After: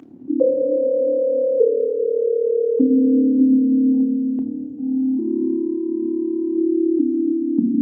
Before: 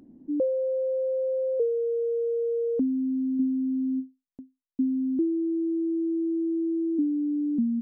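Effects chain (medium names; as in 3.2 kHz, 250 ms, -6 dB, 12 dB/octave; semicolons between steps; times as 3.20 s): 3.93–6.57 s: compressor with a negative ratio -31 dBFS, ratio -1; feedback comb 89 Hz, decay 0.15 s, harmonics all, mix 40%; AM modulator 36 Hz, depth 75%; reverberation RT60 3.6 s, pre-delay 3 ms, DRR 4 dB; trim +7.5 dB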